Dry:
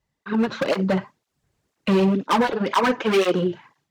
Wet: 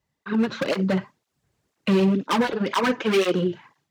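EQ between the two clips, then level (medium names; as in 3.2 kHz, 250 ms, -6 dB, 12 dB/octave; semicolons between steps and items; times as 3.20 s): high-pass 54 Hz; dynamic bell 820 Hz, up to -5 dB, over -35 dBFS, Q 1; 0.0 dB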